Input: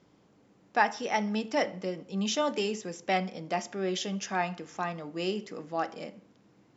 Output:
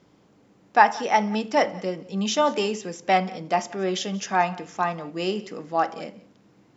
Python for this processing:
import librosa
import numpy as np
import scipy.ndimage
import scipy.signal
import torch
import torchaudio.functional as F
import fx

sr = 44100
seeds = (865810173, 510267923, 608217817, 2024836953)

p1 = fx.dynamic_eq(x, sr, hz=930.0, q=1.2, threshold_db=-40.0, ratio=4.0, max_db=6)
p2 = p1 + fx.echo_single(p1, sr, ms=180, db=-22.0, dry=0)
y = p2 * librosa.db_to_amplitude(4.5)